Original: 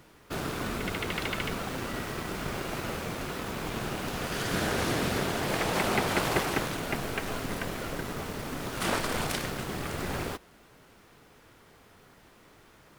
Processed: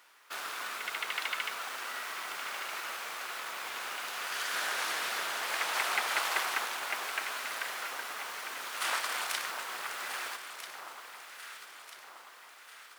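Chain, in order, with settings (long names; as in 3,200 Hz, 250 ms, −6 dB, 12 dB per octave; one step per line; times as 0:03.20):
Chebyshev high-pass filter 1,200 Hz, order 2
on a send: delay that swaps between a low-pass and a high-pass 645 ms, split 1,300 Hz, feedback 71%, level −7 dB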